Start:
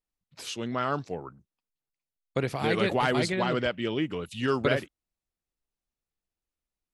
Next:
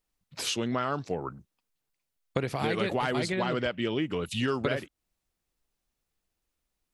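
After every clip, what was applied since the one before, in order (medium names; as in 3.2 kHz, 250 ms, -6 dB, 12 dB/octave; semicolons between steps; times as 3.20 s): compression 4:1, threshold -35 dBFS, peak gain reduction 13 dB; trim +8 dB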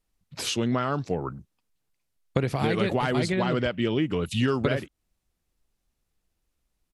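resampled via 32 kHz; bass shelf 260 Hz +7 dB; trim +1.5 dB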